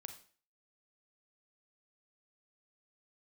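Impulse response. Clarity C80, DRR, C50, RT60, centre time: 13.5 dB, 6.5 dB, 9.5 dB, 0.45 s, 12 ms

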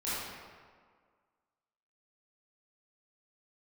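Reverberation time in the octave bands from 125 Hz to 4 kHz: 1.5 s, 1.7 s, 1.8 s, 1.8 s, 1.4 s, 1.1 s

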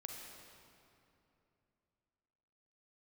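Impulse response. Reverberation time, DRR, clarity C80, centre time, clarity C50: 2.9 s, 0.5 dB, 2.5 dB, 103 ms, 1.5 dB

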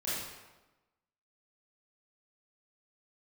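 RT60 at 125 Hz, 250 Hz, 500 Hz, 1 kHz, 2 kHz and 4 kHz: 1.1 s, 1.2 s, 1.1 s, 1.1 s, 0.95 s, 0.85 s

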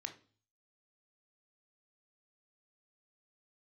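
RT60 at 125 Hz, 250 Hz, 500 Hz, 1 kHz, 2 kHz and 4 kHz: 0.75 s, 0.50 s, 0.45 s, 0.40 s, 0.35 s, 0.45 s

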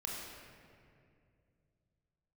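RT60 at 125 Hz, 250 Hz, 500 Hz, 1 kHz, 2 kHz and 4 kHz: 3.4 s, 3.1 s, 2.7 s, 2.1 s, 2.1 s, 1.4 s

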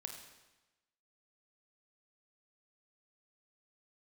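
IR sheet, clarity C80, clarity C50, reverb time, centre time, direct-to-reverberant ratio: 7.5 dB, 5.0 dB, 1.1 s, 33 ms, 3.5 dB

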